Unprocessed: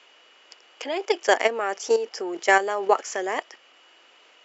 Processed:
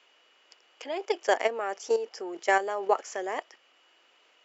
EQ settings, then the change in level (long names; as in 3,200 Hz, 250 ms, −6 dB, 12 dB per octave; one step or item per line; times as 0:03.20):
dynamic equaliser 630 Hz, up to +4 dB, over −32 dBFS, Q 0.8
−8.0 dB